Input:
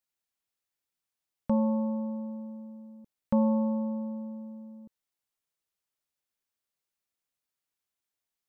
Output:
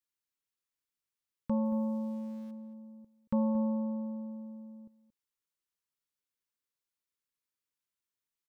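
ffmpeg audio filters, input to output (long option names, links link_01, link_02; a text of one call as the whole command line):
ffmpeg -i in.wav -filter_complex "[0:a]asuperstop=centerf=700:order=8:qfactor=2.4,asettb=1/sr,asplit=3[link_01][link_02][link_03];[link_01]atrim=end=1.654[link_04];[link_02]atrim=start=1.65:end=2.51,asetpts=PTS-STARTPTS,afade=type=in:duration=0.004:curve=qsin,afade=type=out:start_time=0.856:duration=0.004:curve=qsin,aeval=exprs='val(0)*gte(abs(val(0)),0.00266)':channel_layout=same[link_05];[link_03]atrim=start=2.506[link_06];[link_04][link_05]acrossfade=duration=0.004:curve1=hsin:curve2=qsin[link_07];[link_07][link_06]acrossfade=duration=0.004:curve1=qsin:curve2=hsin,asplit=2[link_08][link_09];[link_09]adelay=227.4,volume=-15dB,highshelf=frequency=4000:gain=-5.12[link_10];[link_08][link_10]amix=inputs=2:normalize=0,volume=-4.5dB" out.wav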